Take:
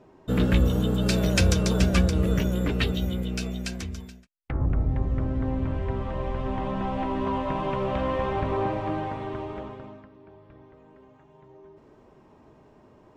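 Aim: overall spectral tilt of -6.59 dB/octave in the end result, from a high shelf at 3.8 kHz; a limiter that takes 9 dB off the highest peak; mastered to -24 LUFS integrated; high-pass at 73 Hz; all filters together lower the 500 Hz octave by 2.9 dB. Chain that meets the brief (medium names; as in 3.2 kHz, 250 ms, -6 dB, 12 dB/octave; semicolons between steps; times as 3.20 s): high-pass 73 Hz; peaking EQ 500 Hz -3.5 dB; treble shelf 3.8 kHz -8 dB; trim +6.5 dB; peak limiter -13 dBFS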